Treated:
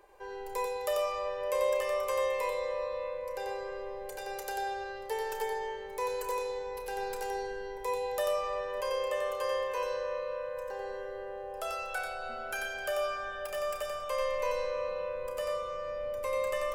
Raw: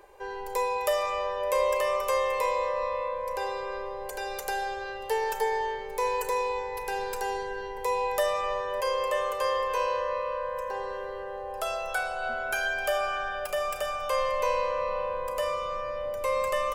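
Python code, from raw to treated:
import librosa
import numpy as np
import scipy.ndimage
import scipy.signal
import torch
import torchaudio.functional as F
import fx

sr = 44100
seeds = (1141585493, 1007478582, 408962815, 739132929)

p1 = fx.doubler(x, sr, ms=30.0, db=-12.0)
p2 = p1 + fx.echo_single(p1, sr, ms=91, db=-4.5, dry=0)
y = p2 * librosa.db_to_amplitude(-6.5)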